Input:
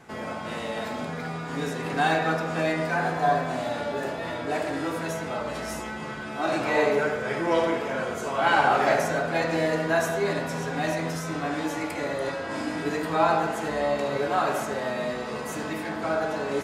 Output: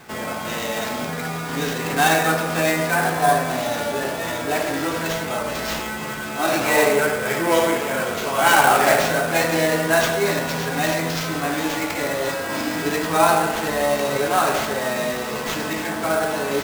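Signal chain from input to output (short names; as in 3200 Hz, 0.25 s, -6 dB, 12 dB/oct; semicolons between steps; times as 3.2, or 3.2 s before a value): high shelf 2400 Hz +8.5 dB; sample-rate reducer 10000 Hz, jitter 20%; gain +4.5 dB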